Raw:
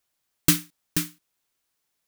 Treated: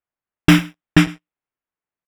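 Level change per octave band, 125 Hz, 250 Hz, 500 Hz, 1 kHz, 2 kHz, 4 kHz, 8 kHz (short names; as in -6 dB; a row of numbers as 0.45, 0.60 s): +14.0, +14.5, +14.5, +15.5, +14.5, +6.5, -5.5 dB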